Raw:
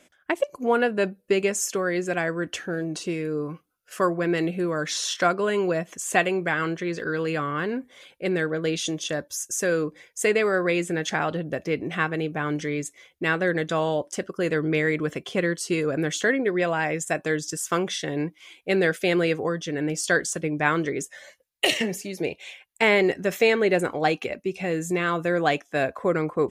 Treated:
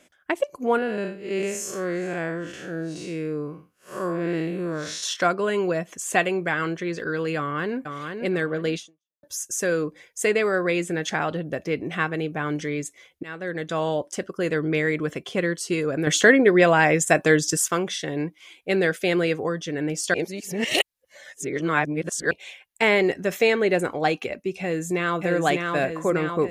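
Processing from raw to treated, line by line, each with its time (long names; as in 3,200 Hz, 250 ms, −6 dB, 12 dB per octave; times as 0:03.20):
0:00.78–0:05.03: spectrum smeared in time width 160 ms
0:07.37–0:07.77: delay throw 480 ms, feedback 25%, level −6 dB
0:08.76–0:09.23: fade out exponential
0:13.23–0:13.88: fade in, from −18.5 dB
0:16.07–0:17.68: clip gain +7.5 dB
0:20.14–0:22.31: reverse
0:24.61–0:25.24: delay throw 600 ms, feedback 65%, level −3 dB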